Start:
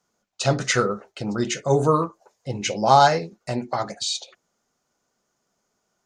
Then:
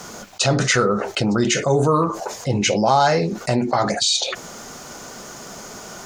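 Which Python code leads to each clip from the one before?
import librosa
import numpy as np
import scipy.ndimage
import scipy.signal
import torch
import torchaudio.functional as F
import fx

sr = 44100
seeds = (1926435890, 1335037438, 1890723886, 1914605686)

y = fx.env_flatten(x, sr, amount_pct=70)
y = y * librosa.db_to_amplitude(-2.5)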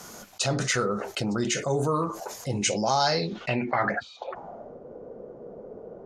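y = fx.filter_sweep_lowpass(x, sr, from_hz=12000.0, to_hz=490.0, start_s=2.42, end_s=4.8, q=5.0)
y = y * librosa.db_to_amplitude(-8.5)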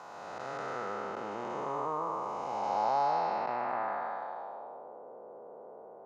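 y = fx.spec_blur(x, sr, span_ms=631.0)
y = fx.bandpass_q(y, sr, hz=920.0, q=3.0)
y = y * librosa.db_to_amplitude(7.5)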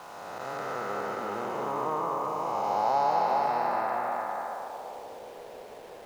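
y = np.where(np.abs(x) >= 10.0 ** (-51.5 / 20.0), x, 0.0)
y = y + 10.0 ** (-3.5 / 20.0) * np.pad(y, (int(414 * sr / 1000.0), 0))[:len(y)]
y = y * librosa.db_to_amplitude(3.0)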